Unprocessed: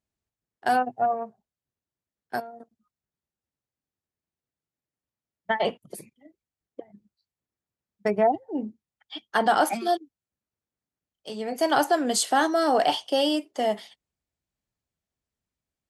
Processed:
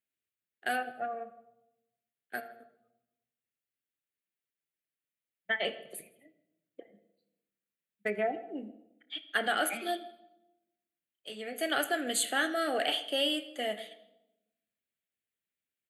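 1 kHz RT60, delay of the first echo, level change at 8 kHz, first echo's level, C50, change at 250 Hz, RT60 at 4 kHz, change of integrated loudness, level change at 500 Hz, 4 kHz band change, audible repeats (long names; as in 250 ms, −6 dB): 0.80 s, 81 ms, −4.5 dB, −21.0 dB, 13.5 dB, −10.0 dB, 0.70 s, −7.5 dB, −9.5 dB, −2.0 dB, 1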